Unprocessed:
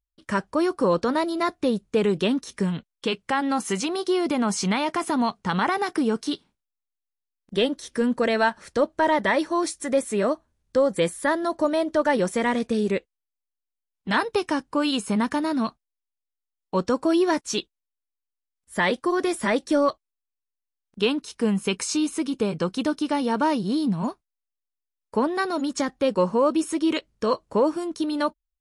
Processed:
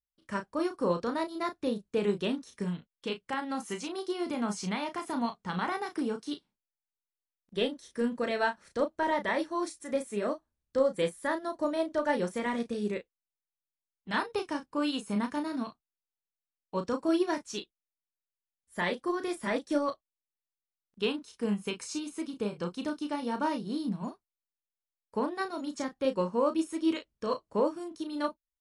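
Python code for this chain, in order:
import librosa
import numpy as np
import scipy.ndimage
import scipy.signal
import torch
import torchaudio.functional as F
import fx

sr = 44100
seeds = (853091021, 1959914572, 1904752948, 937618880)

y = fx.doubler(x, sr, ms=34.0, db=-6.0)
y = fx.upward_expand(y, sr, threshold_db=-30.0, expansion=1.5)
y = y * librosa.db_to_amplitude(-6.5)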